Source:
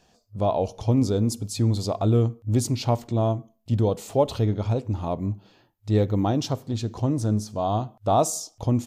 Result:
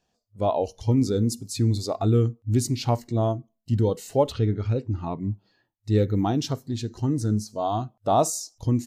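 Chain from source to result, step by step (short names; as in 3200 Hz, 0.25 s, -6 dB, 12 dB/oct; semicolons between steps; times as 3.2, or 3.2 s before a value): spectral noise reduction 13 dB; 4.32–5.31 LPF 4700 Hz 12 dB/oct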